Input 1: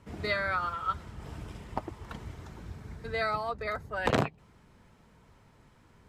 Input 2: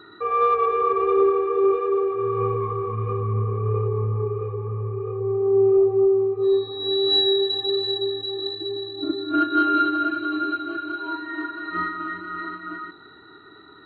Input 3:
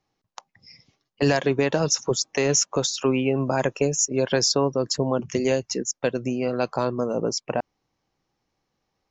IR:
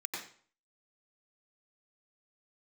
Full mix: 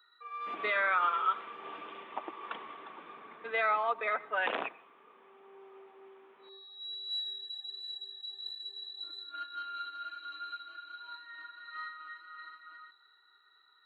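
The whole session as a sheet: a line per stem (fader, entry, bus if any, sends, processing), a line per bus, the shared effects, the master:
+2.5 dB, 0.40 s, send -19.5 dB, tilt shelf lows -5.5 dB, about 710 Hz; limiter -21.5 dBFS, peak gain reduction 11.5 dB; rippled Chebyshev low-pass 3600 Hz, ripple 3 dB
-6.0 dB, 0.00 s, no send, differentiator; vocal rider within 5 dB 0.5 s; HPF 740 Hz 12 dB/oct
off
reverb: on, RT60 0.50 s, pre-delay 87 ms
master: HPF 270 Hz 24 dB/oct; mismatched tape noise reduction decoder only

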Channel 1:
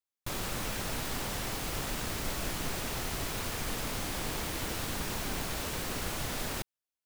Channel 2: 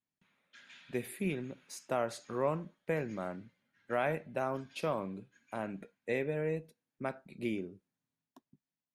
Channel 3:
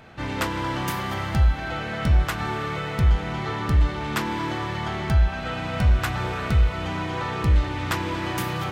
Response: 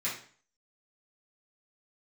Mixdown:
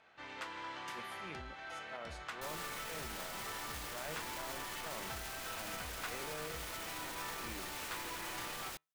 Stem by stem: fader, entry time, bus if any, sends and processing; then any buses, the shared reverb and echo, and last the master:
-2.5 dB, 2.15 s, no bus, no send, limiter -31.5 dBFS, peak gain reduction 9.5 dB
-1.5 dB, 0.00 s, bus A, no send, high shelf 6600 Hz -10 dB; transient shaper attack -12 dB, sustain 0 dB
-9.5 dB, 0.00 s, bus A, no send, LPF 7800 Hz 12 dB/oct; tone controls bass -11 dB, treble -2 dB
bus A: 0.0 dB, resonator 77 Hz, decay 0.25 s, harmonics all, mix 50%; limiter -31 dBFS, peak gain reduction 8 dB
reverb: off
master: low shelf 480 Hz -10.5 dB

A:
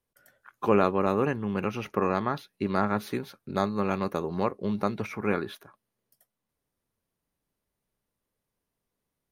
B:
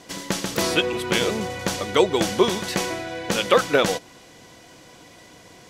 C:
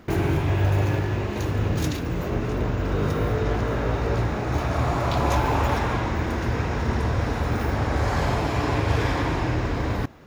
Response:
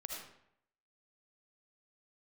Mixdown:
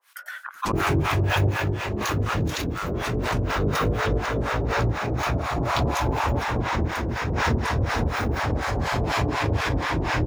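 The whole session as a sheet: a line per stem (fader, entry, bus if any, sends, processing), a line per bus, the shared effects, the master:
-2.0 dB, 0.00 s, send -22 dB, HPF 1200 Hz 24 dB/oct; high shelf 3500 Hz -10 dB
-19.5 dB, 0.55 s, no send, gate -36 dBFS, range -30 dB
+1.5 dB, 0.65 s, no send, dry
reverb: on, RT60 0.70 s, pre-delay 35 ms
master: harmonic tremolo 4.1 Hz, depth 100%, crossover 700 Hz; backwards sustainer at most 26 dB/s

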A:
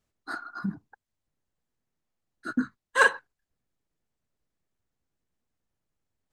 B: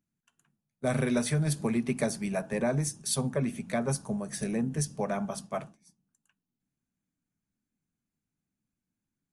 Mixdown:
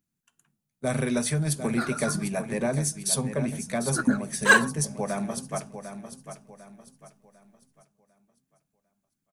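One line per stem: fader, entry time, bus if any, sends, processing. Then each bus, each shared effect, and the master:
+1.0 dB, 1.50 s, no send, no echo send, de-hum 111.1 Hz, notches 12; phaser 0.8 Hz, delay 3 ms, feedback 58%
+1.0 dB, 0.00 s, no send, echo send -10 dB, dry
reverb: off
echo: feedback echo 0.749 s, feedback 35%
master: high shelf 5800 Hz +6.5 dB

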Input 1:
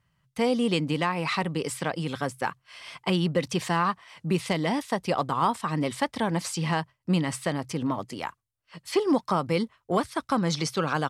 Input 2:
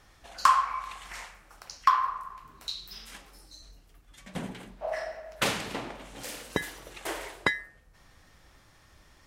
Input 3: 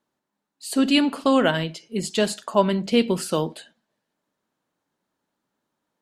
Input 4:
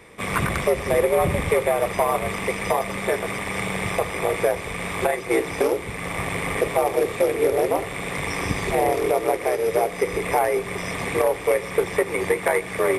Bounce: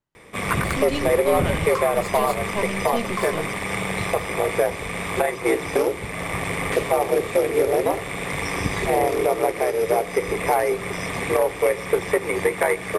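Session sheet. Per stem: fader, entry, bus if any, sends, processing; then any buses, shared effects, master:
-18.0 dB, 0.00 s, no send, dry
-9.5 dB, 1.30 s, no send, dry
-6.0 dB, 0.00 s, no send, half-wave gain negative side -12 dB
+0.5 dB, 0.15 s, no send, dry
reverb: off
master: dry

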